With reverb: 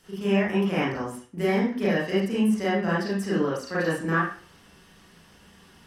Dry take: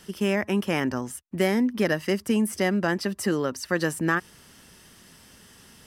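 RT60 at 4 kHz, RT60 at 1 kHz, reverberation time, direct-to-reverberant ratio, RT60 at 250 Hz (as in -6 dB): 0.40 s, 0.40 s, 0.45 s, -9.5 dB, 0.40 s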